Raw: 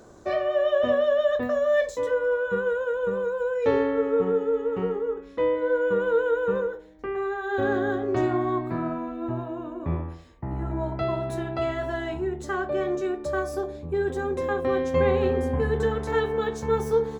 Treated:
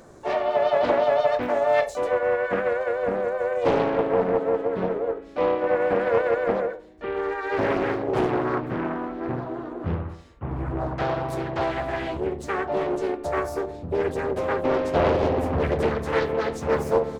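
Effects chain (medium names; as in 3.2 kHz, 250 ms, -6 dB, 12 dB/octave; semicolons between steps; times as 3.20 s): harmony voices -5 st -15 dB, +3 st -6 dB, +7 st -11 dB; loudspeaker Doppler distortion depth 0.82 ms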